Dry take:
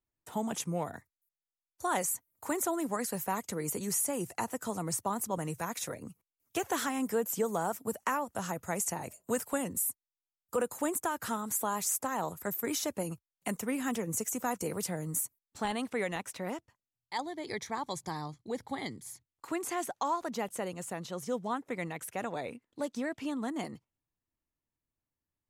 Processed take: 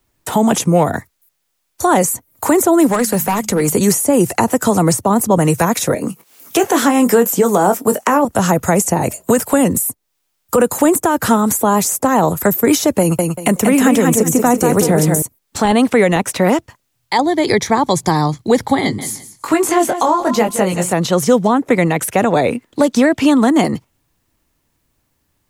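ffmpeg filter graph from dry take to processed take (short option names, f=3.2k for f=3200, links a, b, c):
-filter_complex "[0:a]asettb=1/sr,asplit=3[a][b][c];[a]atrim=end=2.914[d];[b]atrim=start=2.91:end=3.75,asetpts=PTS-STARTPTS,afade=t=in:d=0.004:c=qsin,afade=t=out:st=0.836:d=0.004:c=qsin,asoftclip=type=hard:threshold=-29dB,bandreject=f=53.17:t=h:w=4,bandreject=f=106.34:t=h:w=4,bandreject=f=159.51:t=h:w=4,bandreject=f=212.68:t=h:w=4,acompressor=threshold=-37dB:ratio=2.5:attack=3.2:release=140:knee=1:detection=peak[e];[c]atrim=start=3.746[f];[d][e]acrossfade=d=0.004:c1=hsin:c2=qsin[g];[g][f]acrossfade=d=0.004:c1=qsin:c2=hsin,asettb=1/sr,asplit=3[h][i][j];[h]atrim=end=5.944[k];[i]atrim=start=5.94:end=8.25,asetpts=PTS-STARTPTS,afade=t=in:d=0.004:c=qsin,afade=t=out:st=2.306:d=0.004:c=qsin,highpass=200,acompressor=mode=upward:threshold=-53dB:ratio=2.5:attack=3.2:release=140:knee=2.83:detection=peak,asplit=2[l][m];[m]adelay=21,volume=-9.5dB[n];[l][n]amix=inputs=2:normalize=0,atrim=end_sample=101871[o];[j]atrim=start=8.246[p];[k][o]acrossfade=d=0.004:c1=hsin:c2=qsin[q];[q][p]acrossfade=d=0.004:c1=qsin:c2=hsin,asettb=1/sr,asplit=3[r][s][t];[r]atrim=end=13.004[u];[s]atrim=start=13:end=15.22,asetpts=PTS-STARTPTS,afade=t=in:d=0.004:c=qsin,afade=t=out:st=2.216:d=0.004:c=qsin,bandreject=f=4.7k:w=17,aecho=1:1:186|372|558:0.531|0.138|0.0359,atrim=end_sample=97902[v];[t]atrim=start=15.216[w];[u][v]acrossfade=d=0.004:c1=hsin:c2=qsin[x];[x][w]acrossfade=d=0.004:c1=qsin:c2=hsin,asettb=1/sr,asplit=3[y][z][aa];[y]atrim=end=18.814[ab];[z]atrim=start=18.81:end=20.93,asetpts=PTS-STARTPTS,afade=t=in:d=0.004:c=qsin,afade=t=out:st=2.116:d=0.004:c=qsin,flanger=delay=18.5:depth=4.7:speed=1.2,aecho=1:1:172|344:0.2|0.0439,atrim=end_sample=93492[ac];[aa]atrim=start=20.926[ad];[ab][ac]acrossfade=d=0.004:c1=hsin:c2=qsin[ae];[ae][ad]acrossfade=d=0.004:c1=qsin:c2=hsin,acrossover=split=310|720[af][ag][ah];[af]acompressor=threshold=-39dB:ratio=4[ai];[ag]acompressor=threshold=-38dB:ratio=4[aj];[ah]acompressor=threshold=-44dB:ratio=4[ak];[ai][aj][ak]amix=inputs=3:normalize=0,alimiter=level_in=27dB:limit=-1dB:release=50:level=0:latency=1,volume=-1.5dB"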